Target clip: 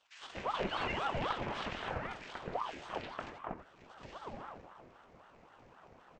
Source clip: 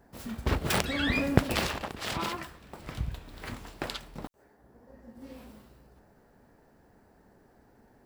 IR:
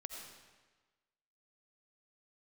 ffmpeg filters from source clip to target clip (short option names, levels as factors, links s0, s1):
-filter_complex "[0:a]acrossover=split=2600[s0][s1];[s1]acompressor=threshold=0.00316:ratio=4:attack=1:release=60[s2];[s0][s2]amix=inputs=2:normalize=0,atempo=1.3,highpass=f=69:p=1,acrossover=split=500|3900[s3][s4][s5];[s3]acrusher=bits=2:mode=log:mix=0:aa=0.000001[s6];[s4]flanger=delay=19.5:depth=5.4:speed=2.8[s7];[s6][s7][s5]amix=inputs=3:normalize=0,tiltshelf=f=970:g=3,aresample=16000,asoftclip=type=tanh:threshold=0.133,aresample=44100,alimiter=level_in=1.68:limit=0.0631:level=0:latency=1:release=459,volume=0.596,equalizer=f=2200:t=o:w=0.88:g=12.5,acrossover=split=1700[s8][s9];[s8]adelay=240[s10];[s10][s9]amix=inputs=2:normalize=0[s11];[1:a]atrim=start_sample=2205,afade=t=out:st=0.14:d=0.01,atrim=end_sample=6615[s12];[s11][s12]afir=irnorm=-1:irlink=0,aeval=exprs='val(0)*sin(2*PI*700*n/s+700*0.6/3.8*sin(2*PI*3.8*n/s))':c=same,volume=2.51"